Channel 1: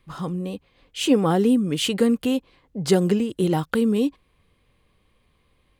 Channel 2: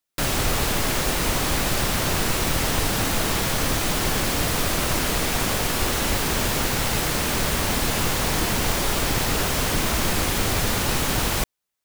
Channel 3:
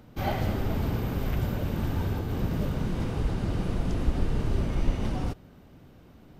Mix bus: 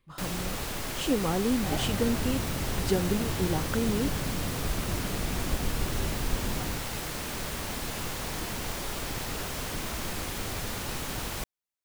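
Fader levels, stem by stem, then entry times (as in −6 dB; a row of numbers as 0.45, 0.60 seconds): −9.0, −11.5, −5.0 decibels; 0.00, 0.00, 1.45 seconds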